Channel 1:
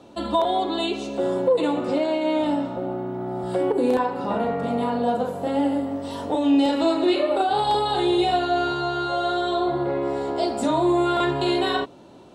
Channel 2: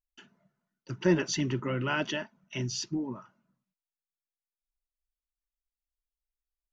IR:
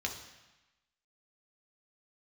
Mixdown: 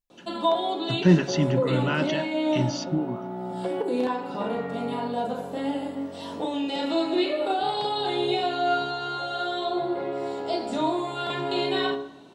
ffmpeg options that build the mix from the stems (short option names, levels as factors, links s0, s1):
-filter_complex "[0:a]highpass=150,flanger=delay=5.6:depth=1.8:regen=69:speed=0.3:shape=triangular,adelay=100,volume=1.12,asplit=2[s0][s1];[s1]volume=0.282[s2];[1:a]equalizer=f=170:w=1.5:g=9,volume=1.33[s3];[2:a]atrim=start_sample=2205[s4];[s2][s4]afir=irnorm=-1:irlink=0[s5];[s0][s3][s5]amix=inputs=3:normalize=0,acrossover=split=5900[s6][s7];[s7]acompressor=threshold=0.00178:ratio=4:attack=1:release=60[s8];[s6][s8]amix=inputs=2:normalize=0,bandreject=f=69.79:t=h:w=4,bandreject=f=139.58:t=h:w=4,bandreject=f=209.37:t=h:w=4,bandreject=f=279.16:t=h:w=4,bandreject=f=348.95:t=h:w=4,bandreject=f=418.74:t=h:w=4,bandreject=f=488.53:t=h:w=4,bandreject=f=558.32:t=h:w=4,bandreject=f=628.11:t=h:w=4,bandreject=f=697.9:t=h:w=4,bandreject=f=767.69:t=h:w=4,bandreject=f=837.48:t=h:w=4,bandreject=f=907.27:t=h:w=4,bandreject=f=977.06:t=h:w=4,bandreject=f=1046.85:t=h:w=4,bandreject=f=1116.64:t=h:w=4,bandreject=f=1186.43:t=h:w=4,bandreject=f=1256.22:t=h:w=4,bandreject=f=1326.01:t=h:w=4,bandreject=f=1395.8:t=h:w=4,bandreject=f=1465.59:t=h:w=4,bandreject=f=1535.38:t=h:w=4,bandreject=f=1605.17:t=h:w=4,bandreject=f=1674.96:t=h:w=4,bandreject=f=1744.75:t=h:w=4,bandreject=f=1814.54:t=h:w=4,bandreject=f=1884.33:t=h:w=4,bandreject=f=1954.12:t=h:w=4,bandreject=f=2023.91:t=h:w=4,bandreject=f=2093.7:t=h:w=4,bandreject=f=2163.49:t=h:w=4,bandreject=f=2233.28:t=h:w=4,bandreject=f=2303.07:t=h:w=4,bandreject=f=2372.86:t=h:w=4,bandreject=f=2442.65:t=h:w=4,bandreject=f=2512.44:t=h:w=4,bandreject=f=2582.23:t=h:w=4"